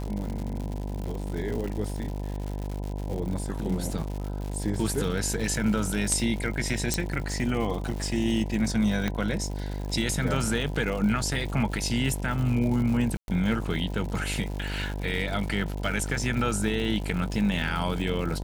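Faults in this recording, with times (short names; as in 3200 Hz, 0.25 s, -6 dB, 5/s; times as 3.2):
buzz 50 Hz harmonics 20 -32 dBFS
crackle 170/s -33 dBFS
6.94 pop
9.08 pop -14 dBFS
13.17–13.28 gap 0.111 s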